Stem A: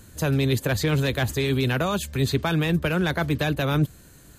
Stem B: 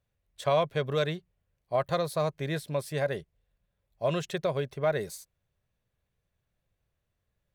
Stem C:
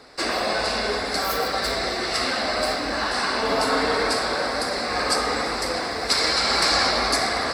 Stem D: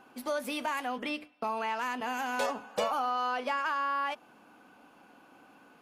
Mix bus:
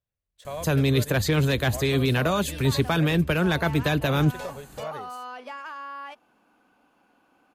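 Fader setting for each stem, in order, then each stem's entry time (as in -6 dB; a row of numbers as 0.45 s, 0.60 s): +0.5 dB, -10.0 dB, mute, -6.5 dB; 0.45 s, 0.00 s, mute, 2.00 s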